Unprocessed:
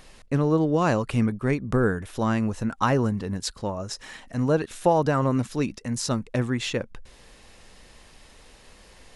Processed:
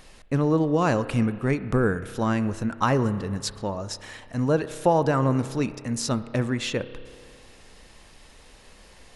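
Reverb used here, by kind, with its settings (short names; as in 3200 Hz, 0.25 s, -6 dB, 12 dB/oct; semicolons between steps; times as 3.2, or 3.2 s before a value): spring tank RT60 2.1 s, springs 30 ms, chirp 40 ms, DRR 13 dB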